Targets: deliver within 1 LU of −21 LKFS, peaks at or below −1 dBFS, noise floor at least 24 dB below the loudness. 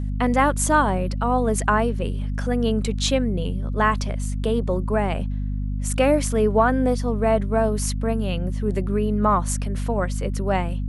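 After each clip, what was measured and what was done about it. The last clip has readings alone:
mains hum 50 Hz; hum harmonics up to 250 Hz; level of the hum −23 dBFS; integrated loudness −22.5 LKFS; sample peak −5.0 dBFS; target loudness −21.0 LKFS
→ hum removal 50 Hz, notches 5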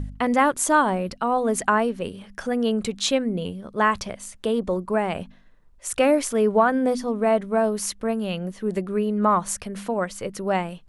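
mains hum none found; integrated loudness −23.5 LKFS; sample peak −6.5 dBFS; target loudness −21.0 LKFS
→ level +2.5 dB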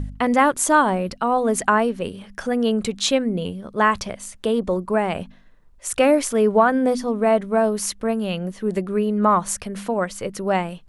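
integrated loudness −21.0 LKFS; sample peak −4.0 dBFS; background noise floor −48 dBFS

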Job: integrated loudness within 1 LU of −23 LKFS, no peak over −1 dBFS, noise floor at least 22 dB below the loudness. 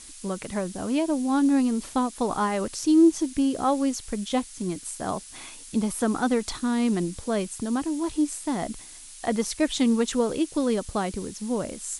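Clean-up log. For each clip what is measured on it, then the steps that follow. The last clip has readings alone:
background noise floor −44 dBFS; target noise floor −48 dBFS; integrated loudness −26.0 LKFS; sample peak −10.0 dBFS; target loudness −23.0 LKFS
→ noise reduction from a noise print 6 dB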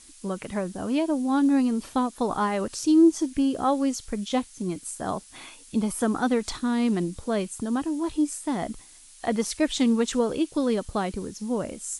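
background noise floor −50 dBFS; integrated loudness −26.0 LKFS; sample peak −10.0 dBFS; target loudness −23.0 LKFS
→ level +3 dB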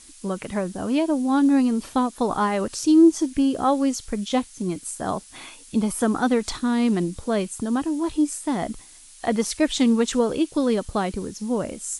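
integrated loudness −23.0 LKFS; sample peak −7.0 dBFS; background noise floor −47 dBFS

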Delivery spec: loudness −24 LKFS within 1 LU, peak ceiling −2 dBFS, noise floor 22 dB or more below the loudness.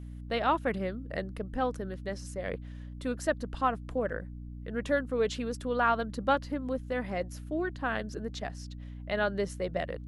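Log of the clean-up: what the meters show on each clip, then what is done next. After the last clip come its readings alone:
mains hum 60 Hz; hum harmonics up to 300 Hz; level of the hum −40 dBFS; integrated loudness −32.5 LKFS; sample peak −13.5 dBFS; target loudness −24.0 LKFS
→ mains-hum notches 60/120/180/240/300 Hz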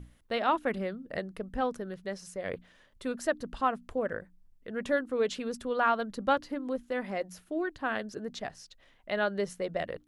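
mains hum none found; integrated loudness −33.0 LKFS; sample peak −14.0 dBFS; target loudness −24.0 LKFS
→ level +9 dB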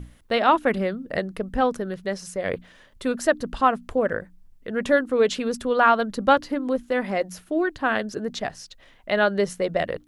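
integrated loudness −24.0 LKFS; sample peak −5.0 dBFS; background noise floor −54 dBFS

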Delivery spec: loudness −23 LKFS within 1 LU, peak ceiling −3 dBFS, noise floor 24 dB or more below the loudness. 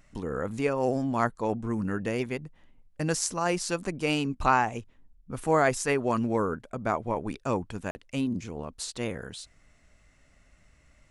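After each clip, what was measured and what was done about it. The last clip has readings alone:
number of dropouts 1; longest dropout 40 ms; integrated loudness −29.0 LKFS; sample peak −9.5 dBFS; target loudness −23.0 LKFS
→ repair the gap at 0:07.91, 40 ms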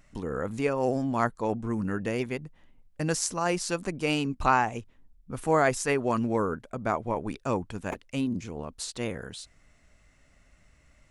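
number of dropouts 0; integrated loudness −29.0 LKFS; sample peak −9.5 dBFS; target loudness −23.0 LKFS
→ level +6 dB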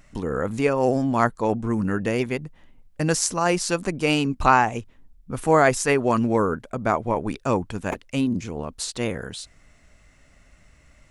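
integrated loudness −23.0 LKFS; sample peak −3.0 dBFS; background noise floor −56 dBFS

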